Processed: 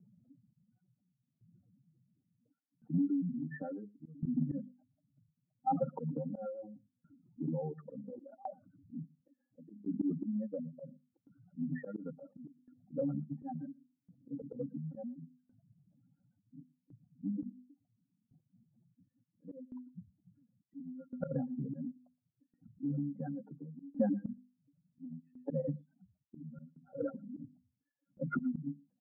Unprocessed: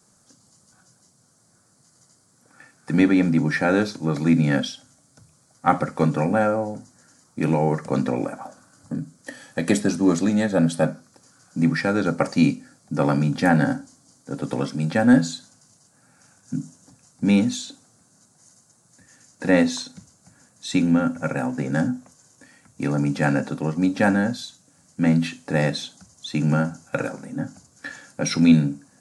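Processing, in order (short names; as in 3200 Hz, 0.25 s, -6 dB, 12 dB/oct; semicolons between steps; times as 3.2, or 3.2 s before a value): spectral contrast raised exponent 3.5; notch comb 1100 Hz; limiter -15 dBFS, peak gain reduction 7.5 dB; notches 50/100/150/200/250 Hz; reverb removal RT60 0.59 s; auto swell 0.133 s; low-pass opened by the level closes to 340 Hz, open at -23 dBFS; steep low-pass 1500 Hz 48 dB/oct; compressor 4:1, threshold -29 dBFS, peak gain reduction 10 dB; outdoor echo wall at 20 m, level -27 dB; dB-ramp tremolo decaying 0.71 Hz, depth 21 dB; gain +2 dB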